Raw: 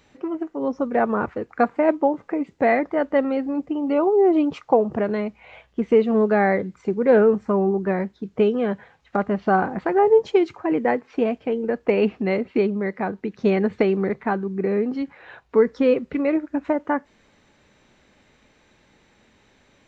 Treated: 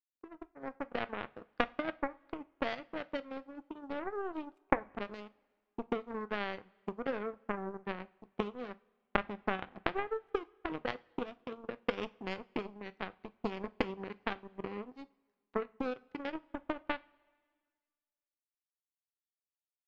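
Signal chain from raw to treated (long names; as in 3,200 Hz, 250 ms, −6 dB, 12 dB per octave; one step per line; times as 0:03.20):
downward compressor 5 to 1, threshold −20 dBFS, peak gain reduction 9 dB
power curve on the samples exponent 3
coupled-rooms reverb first 0.29 s, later 1.7 s, from −20 dB, DRR 13.5 dB
level +2.5 dB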